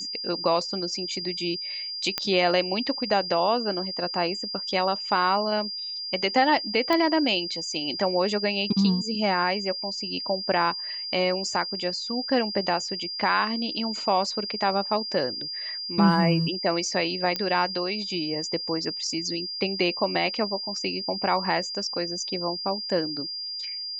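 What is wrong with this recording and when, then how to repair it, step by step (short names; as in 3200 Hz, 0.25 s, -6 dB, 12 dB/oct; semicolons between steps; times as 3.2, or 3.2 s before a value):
tone 4800 Hz -31 dBFS
2.18 pop -8 dBFS
6.93 pop -12 dBFS
17.36 pop -12 dBFS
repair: de-click; notch 4800 Hz, Q 30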